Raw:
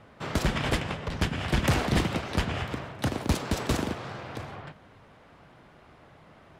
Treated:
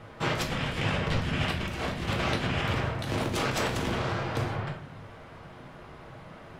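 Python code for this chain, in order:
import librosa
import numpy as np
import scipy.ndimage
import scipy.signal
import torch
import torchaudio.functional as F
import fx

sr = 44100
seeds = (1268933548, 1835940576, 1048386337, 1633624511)

y = fx.dynamic_eq(x, sr, hz=2600.0, q=1.1, threshold_db=-44.0, ratio=4.0, max_db=4)
y = fx.over_compress(y, sr, threshold_db=-33.0, ratio=-1.0)
y = fx.room_shoebox(y, sr, seeds[0], volume_m3=62.0, walls='mixed', distance_m=0.62)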